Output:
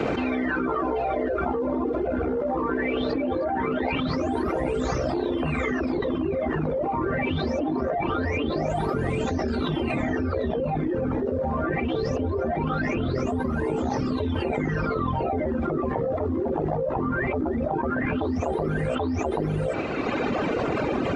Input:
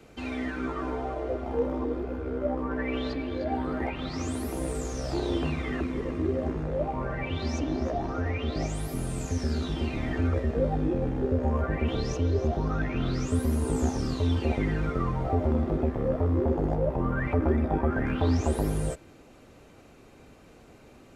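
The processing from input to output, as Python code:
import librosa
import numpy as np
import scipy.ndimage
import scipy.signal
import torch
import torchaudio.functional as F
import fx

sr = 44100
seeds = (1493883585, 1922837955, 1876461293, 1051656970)

p1 = fx.highpass(x, sr, hz=120.0, slope=6)
p2 = fx.mod_noise(p1, sr, seeds[0], snr_db=31)
p3 = fx.low_shelf(p2, sr, hz=190.0, db=-7.0)
p4 = p3 + fx.echo_single(p3, sr, ms=783, db=-7.0, dry=0)
p5 = fx.dereverb_blind(p4, sr, rt60_s=1.9)
p6 = fx.spacing_loss(p5, sr, db_at_10k=31)
y = fx.env_flatten(p6, sr, amount_pct=100)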